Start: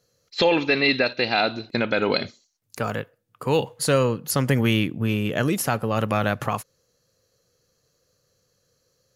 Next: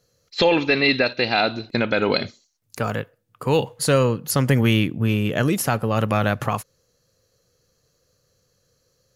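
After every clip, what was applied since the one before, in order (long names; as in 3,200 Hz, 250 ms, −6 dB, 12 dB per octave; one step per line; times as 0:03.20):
low-shelf EQ 87 Hz +6.5 dB
level +1.5 dB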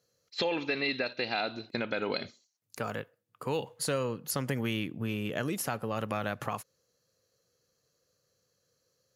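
high-pass filter 180 Hz 6 dB per octave
downward compressor 2 to 1, threshold −22 dBFS, peak gain reduction 5 dB
level −8 dB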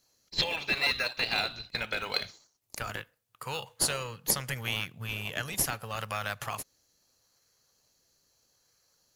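guitar amp tone stack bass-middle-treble 10-0-10
in parallel at −9.5 dB: sample-and-hold swept by an LFO 22×, swing 100% 0.77 Hz
on the sum: level +8 dB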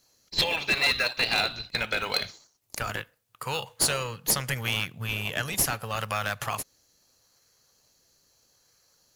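hard clipping −22 dBFS, distortion −15 dB
level +5 dB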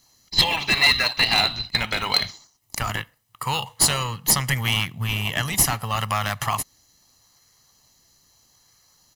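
comb filter 1 ms, depth 55%
level +5 dB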